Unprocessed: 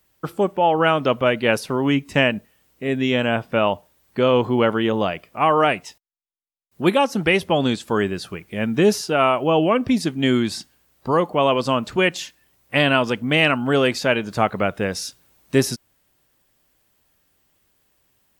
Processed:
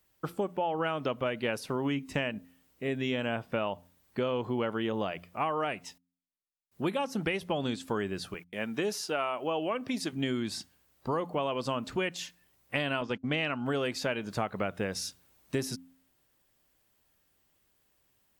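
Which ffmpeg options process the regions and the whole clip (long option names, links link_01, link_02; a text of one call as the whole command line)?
ffmpeg -i in.wav -filter_complex "[0:a]asettb=1/sr,asplit=3[link_01][link_02][link_03];[link_01]atrim=end=8.344[link_04];[link_02]atrim=start=8.34:end=10.13,asetpts=PTS-STARTPTS,afade=type=in:duration=0.004:curve=qsin,afade=type=out:start_time=1.786:duration=0.004:curve=qsin,highpass=frequency=430:poles=1,agate=range=-32dB:threshold=-46dB:ratio=16:release=100:detection=peak[link_05];[link_03]atrim=start=10.126[link_06];[link_04][link_05]acrossfade=duration=0.004:curve1=hsin:curve2=qsin[link_07];[link_07][link_06]acrossfade=duration=0.004:curve1=qsin:curve2=hsin,asettb=1/sr,asplit=3[link_08][link_09][link_10];[link_08]atrim=end=13.014[link_11];[link_09]atrim=start=13.01:end=13.66,asetpts=PTS-STARTPTS,afade=type=in:duration=0.004:curve=qsin,afade=type=out:start_time=0.646:duration=0.004:curve=qsin,agate=range=-32dB:threshold=-27dB:ratio=16:release=100:detection=peak,lowpass=frequency=7000:width=0.5412,lowpass=frequency=7000:width=1.3066[link_12];[link_10]atrim=start=13.656[link_13];[link_11][link_12]acrossfade=duration=0.004:curve1=hsin:curve2=qsin[link_14];[link_14][link_13]acrossfade=duration=0.004:curve1=qsin:curve2=hsin,bandreject=frequency=87.99:width_type=h:width=4,bandreject=frequency=175.98:width_type=h:width=4,bandreject=frequency=263.97:width_type=h:width=4,acompressor=threshold=-21dB:ratio=6,volume=-6.5dB" out.wav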